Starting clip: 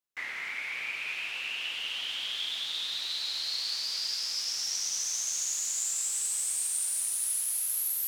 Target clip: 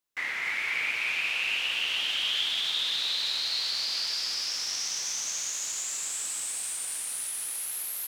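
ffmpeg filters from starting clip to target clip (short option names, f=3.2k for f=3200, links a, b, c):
-filter_complex "[0:a]acrossover=split=3700[a][b];[b]acompressor=threshold=-38dB:ratio=4:attack=1:release=60[c];[a][c]amix=inputs=2:normalize=0,asplit=2[d][e];[e]aecho=0:1:58.31|291.5:0.316|0.631[f];[d][f]amix=inputs=2:normalize=0,volume=4.5dB"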